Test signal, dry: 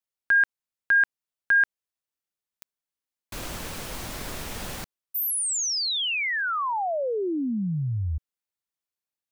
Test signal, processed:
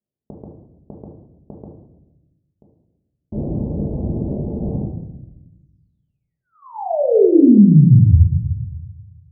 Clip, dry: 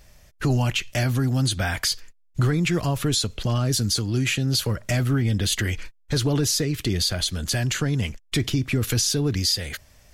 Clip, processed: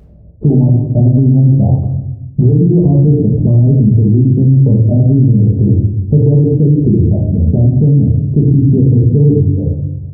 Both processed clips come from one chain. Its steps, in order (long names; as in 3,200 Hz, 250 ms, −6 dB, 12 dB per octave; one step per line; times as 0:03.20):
high-pass filter 74 Hz 12 dB per octave
reverb reduction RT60 0.73 s
Gaussian smoothing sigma 19 samples
rectangular room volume 330 cubic metres, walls mixed, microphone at 1.4 metres
boost into a limiter +18 dB
level −1 dB